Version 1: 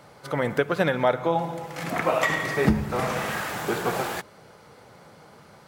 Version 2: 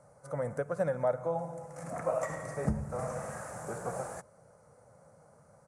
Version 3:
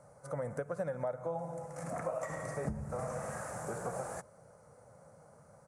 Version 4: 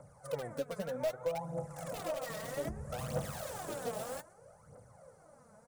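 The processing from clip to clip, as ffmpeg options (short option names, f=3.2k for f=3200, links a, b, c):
-af "firequalizer=gain_entry='entry(140,0);entry(200,-5);entry(370,-12);entry(540,3);entry(860,-6);entry(1300,-6);entry(3200,-27);entry(6100,-4);entry(9500,4);entry(14000,-26)':delay=0.05:min_phase=1,volume=-7dB"
-af "acompressor=threshold=-36dB:ratio=3,volume=1dB"
-filter_complex "[0:a]aecho=1:1:124:0.0708,acrossover=split=810[a][b];[b]aeval=exprs='(mod(112*val(0)+1,2)-1)/112':c=same[c];[a][c]amix=inputs=2:normalize=0,aphaser=in_gain=1:out_gain=1:delay=4.8:decay=0.66:speed=0.63:type=triangular,volume=-2dB"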